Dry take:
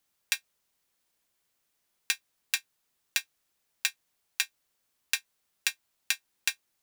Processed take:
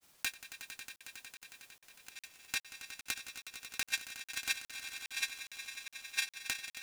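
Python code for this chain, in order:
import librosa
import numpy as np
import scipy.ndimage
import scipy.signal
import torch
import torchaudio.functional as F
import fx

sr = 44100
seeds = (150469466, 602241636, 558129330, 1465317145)

y = fx.self_delay(x, sr, depth_ms=0.23)
y = fx.over_compress(y, sr, threshold_db=-38.0, ratio=-1.0)
y = fx.granulator(y, sr, seeds[0], grain_ms=100.0, per_s=20.0, spray_ms=100.0, spread_st=0)
y = fx.echo_swell(y, sr, ms=91, loudest=5, wet_db=-13.0)
y = fx.buffer_crackle(y, sr, first_s=0.96, period_s=0.41, block=2048, kind='zero')
y = y * 10.0 ** (7.5 / 20.0)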